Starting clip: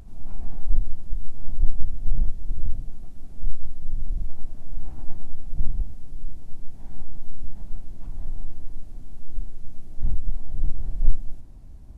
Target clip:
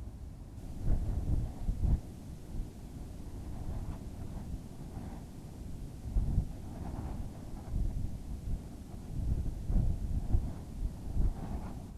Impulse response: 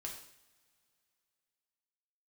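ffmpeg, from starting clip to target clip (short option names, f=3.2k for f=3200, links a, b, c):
-af "areverse,highpass=64,volume=4.5dB"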